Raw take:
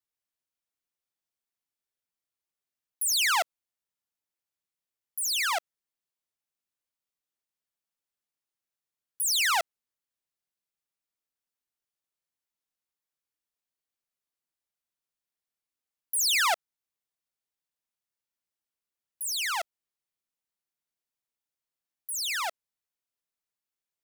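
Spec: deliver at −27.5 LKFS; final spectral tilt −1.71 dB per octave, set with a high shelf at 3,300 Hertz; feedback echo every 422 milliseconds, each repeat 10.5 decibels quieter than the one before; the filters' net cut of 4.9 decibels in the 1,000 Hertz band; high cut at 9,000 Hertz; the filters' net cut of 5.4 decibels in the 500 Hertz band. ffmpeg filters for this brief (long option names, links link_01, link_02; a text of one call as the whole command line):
ffmpeg -i in.wav -af "lowpass=9000,equalizer=frequency=500:width_type=o:gain=-6,equalizer=frequency=1000:width_type=o:gain=-3.5,highshelf=frequency=3300:gain=-9,aecho=1:1:422|844|1266:0.299|0.0896|0.0269,volume=6.5dB" out.wav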